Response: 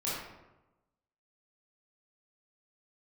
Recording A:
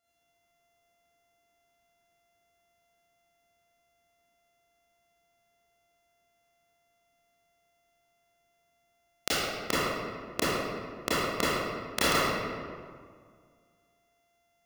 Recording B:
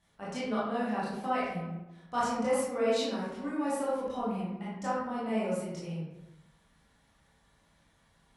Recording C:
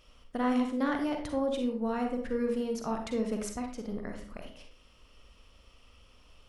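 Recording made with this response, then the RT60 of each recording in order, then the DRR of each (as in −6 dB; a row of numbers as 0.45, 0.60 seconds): B; 1.9, 1.0, 0.45 seconds; −11.0, −8.5, 3.5 decibels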